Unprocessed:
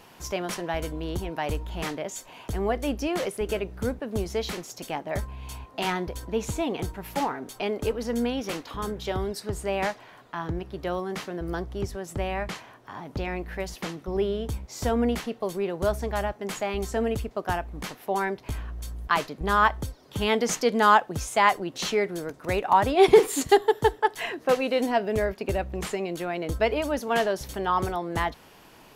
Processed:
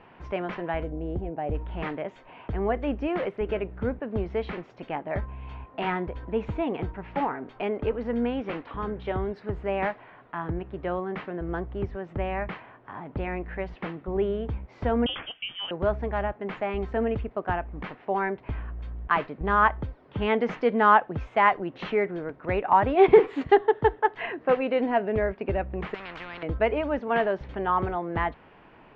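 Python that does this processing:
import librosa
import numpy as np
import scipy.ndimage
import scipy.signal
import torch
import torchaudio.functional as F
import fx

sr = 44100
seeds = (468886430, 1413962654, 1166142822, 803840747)

y = fx.spec_box(x, sr, start_s=0.83, length_s=0.72, low_hz=820.0, high_hz=6400.0, gain_db=-12)
y = fx.freq_invert(y, sr, carrier_hz=3400, at=(15.06, 15.71))
y = fx.spectral_comp(y, sr, ratio=10.0, at=(25.94, 26.43))
y = scipy.signal.sosfilt(scipy.signal.butter(4, 2500.0, 'lowpass', fs=sr, output='sos'), y)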